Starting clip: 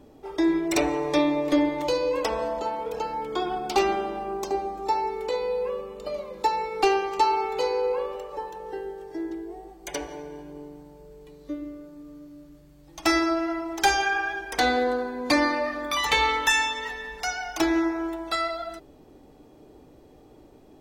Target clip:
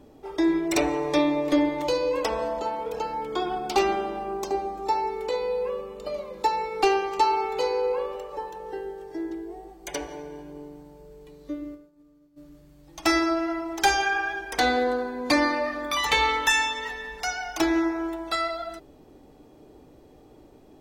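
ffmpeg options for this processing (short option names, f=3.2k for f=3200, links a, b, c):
-filter_complex "[0:a]asplit=3[a][b][c];[a]afade=t=out:st=11.74:d=0.02[d];[b]agate=range=-33dB:threshold=-34dB:ratio=3:detection=peak,afade=t=in:st=11.74:d=0.02,afade=t=out:st=12.36:d=0.02[e];[c]afade=t=in:st=12.36:d=0.02[f];[d][e][f]amix=inputs=3:normalize=0"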